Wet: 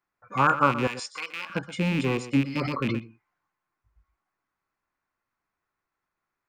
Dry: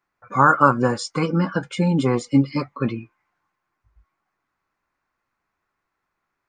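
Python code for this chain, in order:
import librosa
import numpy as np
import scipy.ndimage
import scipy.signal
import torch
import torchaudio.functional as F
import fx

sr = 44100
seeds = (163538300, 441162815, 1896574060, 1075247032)

y = fx.rattle_buzz(x, sr, strikes_db=-25.0, level_db=-15.0)
y = fx.highpass(y, sr, hz=1200.0, slope=12, at=(0.87, 1.5))
y = y + 10.0 ** (-14.0 / 20.0) * np.pad(y, (int(123 * sr / 1000.0), 0))[:len(y)]
y = fx.sustainer(y, sr, db_per_s=24.0, at=(2.53, 2.99))
y = y * librosa.db_to_amplitude(-6.5)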